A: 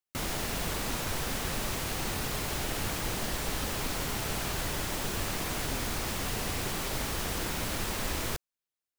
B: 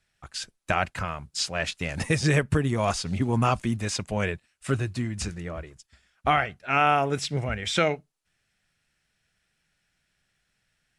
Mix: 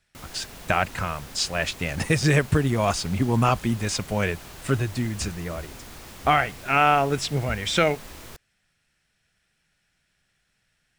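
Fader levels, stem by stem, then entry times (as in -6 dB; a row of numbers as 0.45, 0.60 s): -9.5, +2.5 dB; 0.00, 0.00 s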